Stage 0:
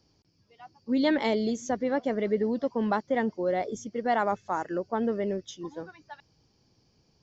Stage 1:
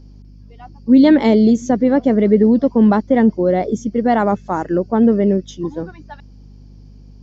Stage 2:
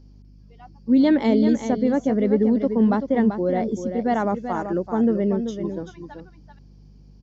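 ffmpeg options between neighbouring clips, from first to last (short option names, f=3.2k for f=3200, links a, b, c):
-af "equalizer=f=190:w=0.48:g=12.5,aeval=exprs='val(0)+0.00562*(sin(2*PI*50*n/s)+sin(2*PI*2*50*n/s)/2+sin(2*PI*3*50*n/s)/3+sin(2*PI*4*50*n/s)/4+sin(2*PI*5*50*n/s)/5)':c=same,volume=5.5dB"
-af "aecho=1:1:386:0.376,volume=-7dB"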